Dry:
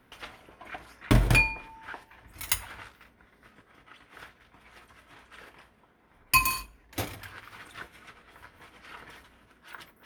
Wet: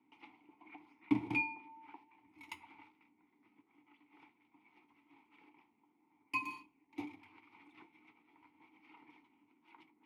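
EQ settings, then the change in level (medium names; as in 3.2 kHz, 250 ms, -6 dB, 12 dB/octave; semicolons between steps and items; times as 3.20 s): vowel filter u; high-pass 83 Hz 24 dB/octave; 0.0 dB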